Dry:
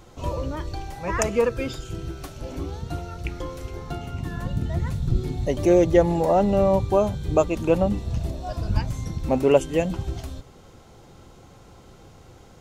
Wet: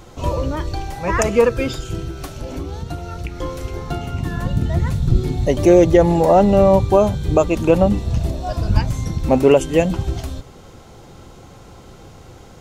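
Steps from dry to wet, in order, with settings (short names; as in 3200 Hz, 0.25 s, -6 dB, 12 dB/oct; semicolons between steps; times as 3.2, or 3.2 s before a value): 1.99–3.42 compressor, threshold -30 dBFS, peak gain reduction 7 dB; maximiser +8 dB; gain -1 dB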